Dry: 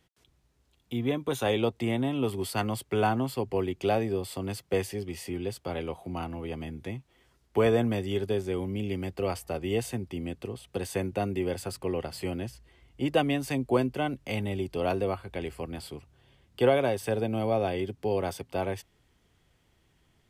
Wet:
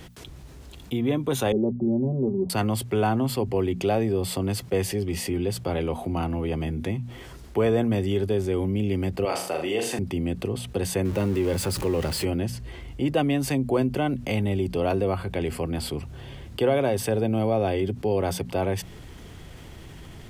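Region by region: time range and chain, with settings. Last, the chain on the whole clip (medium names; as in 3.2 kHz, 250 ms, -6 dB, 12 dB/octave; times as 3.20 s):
1.52–2.50 s: Gaussian low-pass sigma 15 samples + comb 5.2 ms, depth 92%
9.25–9.99 s: frequency weighting A + flutter echo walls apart 6.6 m, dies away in 0.38 s
11.05–12.25 s: jump at every zero crossing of -37.5 dBFS + band-stop 710 Hz, Q 7.7
whole clip: bass shelf 490 Hz +5.5 dB; hum notches 60/120/180/240 Hz; level flattener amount 50%; trim -3 dB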